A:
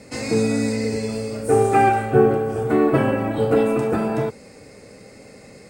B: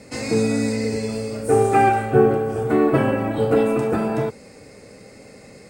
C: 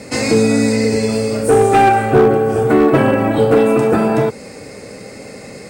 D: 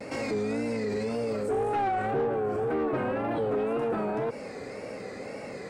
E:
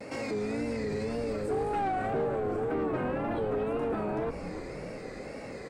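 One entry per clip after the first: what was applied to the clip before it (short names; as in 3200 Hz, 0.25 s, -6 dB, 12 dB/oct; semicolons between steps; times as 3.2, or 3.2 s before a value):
nothing audible
low shelf 76 Hz -7 dB; in parallel at +2 dB: compressor 12:1, threshold -24 dBFS, peak gain reduction 14.5 dB; on the sum: hard clip -9 dBFS, distortion -18 dB; gain +4 dB
limiter -15.5 dBFS, peak gain reduction 10.5 dB; vibrato 1.9 Hz 96 cents; overdrive pedal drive 11 dB, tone 1100 Hz, clips at -15 dBFS; gain -5.5 dB
frequency-shifting echo 0.298 s, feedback 61%, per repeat -140 Hz, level -10 dB; gain -3 dB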